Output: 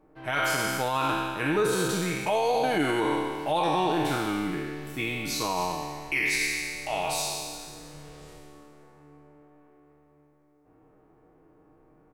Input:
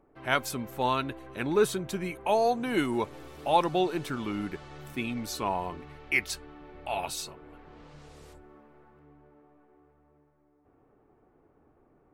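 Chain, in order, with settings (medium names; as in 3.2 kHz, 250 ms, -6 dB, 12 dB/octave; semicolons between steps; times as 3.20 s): spectral sustain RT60 1.87 s; comb 6.4 ms, depth 56%; peak limiter -16.5 dBFS, peak gain reduction 9 dB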